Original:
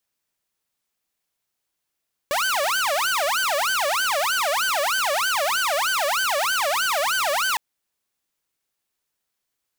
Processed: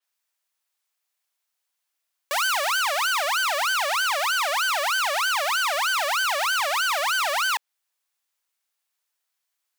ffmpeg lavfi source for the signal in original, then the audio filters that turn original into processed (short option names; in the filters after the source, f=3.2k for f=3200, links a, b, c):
-f lavfi -i "aevalsrc='0.133*(2*mod((1055*t-495/(2*PI*3.2)*sin(2*PI*3.2*t)),1)-1)':d=5.26:s=44100"
-af "highpass=720,adynamicequalizer=threshold=0.02:dfrequency=5700:dqfactor=0.7:tfrequency=5700:tqfactor=0.7:attack=5:release=100:ratio=0.375:range=2:mode=cutabove:tftype=highshelf"